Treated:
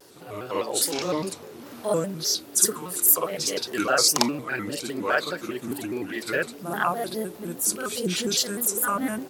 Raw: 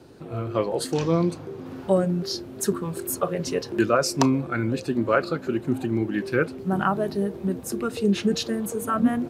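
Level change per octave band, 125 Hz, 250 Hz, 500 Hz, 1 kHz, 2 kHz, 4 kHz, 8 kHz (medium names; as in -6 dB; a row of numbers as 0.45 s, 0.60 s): -10.0 dB, -7.0 dB, -4.0 dB, -0.5 dB, +2.5 dB, +7.0 dB, +11.0 dB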